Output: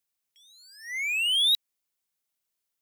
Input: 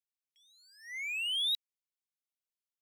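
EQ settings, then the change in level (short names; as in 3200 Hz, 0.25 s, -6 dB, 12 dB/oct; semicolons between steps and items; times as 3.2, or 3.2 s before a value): high shelf 7600 Hz +5.5 dB; +8.0 dB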